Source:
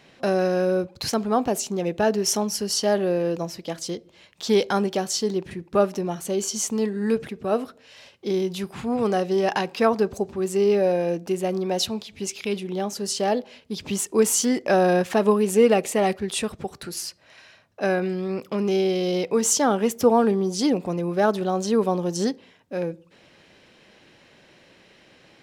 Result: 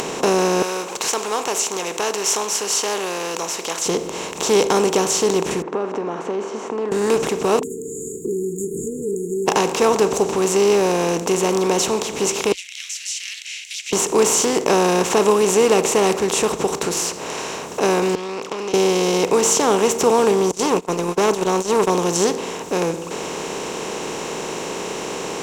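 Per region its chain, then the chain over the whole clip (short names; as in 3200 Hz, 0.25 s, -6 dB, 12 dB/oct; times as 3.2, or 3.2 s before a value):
0.62–3.86 HPF 1400 Hz + upward compressor, threshold -40 dBFS
5.62–6.92 compressor 2:1, threshold -46 dBFS + Chebyshev band-pass 230–1600 Hz, order 3
7.59–9.48 compressor 3:1, threshold -39 dBFS + brick-wall FIR band-stop 460–6600 Hz + dispersion highs, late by 42 ms, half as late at 440 Hz
12.52–13.93 steep high-pass 2100 Hz 96 dB/oct + tape spacing loss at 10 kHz 23 dB
18.15–18.74 band-pass 5300 Hz, Q 0.6 + air absorption 250 m + compressor, threshold -45 dBFS
20.51–21.9 gate -26 dBFS, range -45 dB + core saturation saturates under 850 Hz
whole clip: per-bin compression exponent 0.4; ripple EQ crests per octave 0.72, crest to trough 7 dB; upward compressor, threshold -22 dBFS; gain -2 dB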